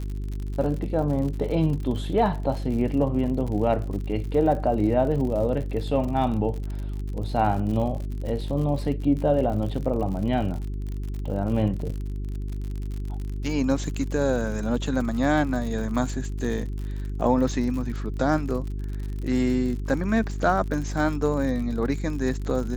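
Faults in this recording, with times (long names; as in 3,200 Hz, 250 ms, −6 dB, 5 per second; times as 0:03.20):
surface crackle 66 per second −32 dBFS
mains hum 50 Hz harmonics 8 −30 dBFS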